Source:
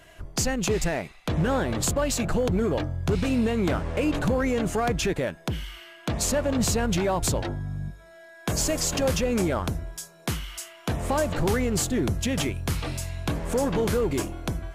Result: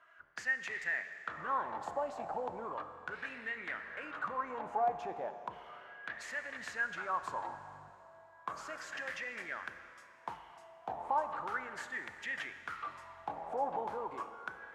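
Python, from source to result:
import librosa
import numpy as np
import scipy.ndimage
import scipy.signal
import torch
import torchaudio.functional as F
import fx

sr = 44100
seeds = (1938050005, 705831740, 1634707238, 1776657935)

y = fx.wah_lfo(x, sr, hz=0.35, low_hz=770.0, high_hz=1900.0, q=8.5)
y = fx.rev_schroeder(y, sr, rt60_s=2.9, comb_ms=28, drr_db=9.5)
y = F.gain(torch.from_numpy(y), 4.0).numpy()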